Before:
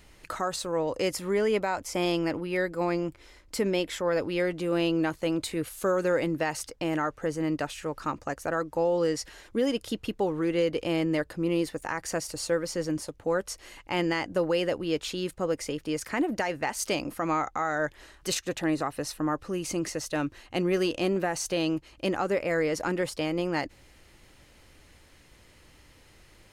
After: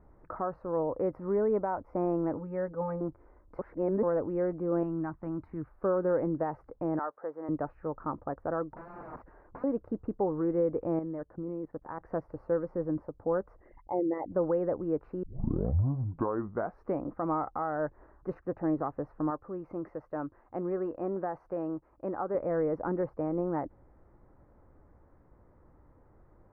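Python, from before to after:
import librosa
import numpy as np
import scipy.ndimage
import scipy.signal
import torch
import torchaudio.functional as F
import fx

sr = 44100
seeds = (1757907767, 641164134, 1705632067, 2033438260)

y = fx.notch_comb(x, sr, f0_hz=350.0, at=(2.34, 3.01))
y = fx.peak_eq(y, sr, hz=500.0, db=-14.5, octaves=0.89, at=(4.83, 5.69))
y = fx.highpass(y, sr, hz=570.0, slope=12, at=(6.99, 7.49))
y = fx.overflow_wrap(y, sr, gain_db=31.5, at=(8.67, 9.64))
y = fx.level_steps(y, sr, step_db=17, at=(10.99, 12.01))
y = fx.envelope_sharpen(y, sr, power=3.0, at=(13.58, 14.3), fade=0.02)
y = fx.low_shelf(y, sr, hz=380.0, db=-8.5, at=(19.3, 22.35))
y = fx.edit(y, sr, fx.reverse_span(start_s=3.59, length_s=0.44),
    fx.tape_start(start_s=15.23, length_s=1.79), tone=tone)
y = scipy.signal.sosfilt(scipy.signal.cheby2(4, 50, 3100.0, 'lowpass', fs=sr, output='sos'), y)
y = y * 10.0 ** (-2.0 / 20.0)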